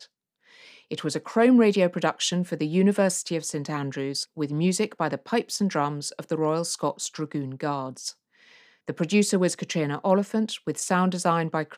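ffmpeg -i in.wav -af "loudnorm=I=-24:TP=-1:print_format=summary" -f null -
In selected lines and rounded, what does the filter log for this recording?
Input Integrated:    -25.2 LUFS
Input True Peak:      -9.0 dBTP
Input LRA:             3.8 LU
Input Threshold:     -35.6 LUFS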